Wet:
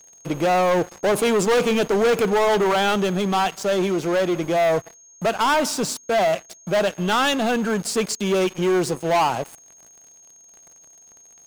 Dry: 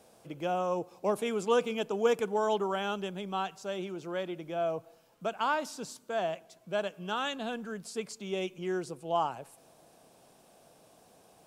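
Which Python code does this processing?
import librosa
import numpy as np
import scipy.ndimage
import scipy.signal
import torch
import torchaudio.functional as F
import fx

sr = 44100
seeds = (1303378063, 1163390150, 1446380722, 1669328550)

y = fx.leveller(x, sr, passes=5)
y = y + 10.0 ** (-47.0 / 20.0) * np.sin(2.0 * np.pi * 6500.0 * np.arange(len(y)) / sr)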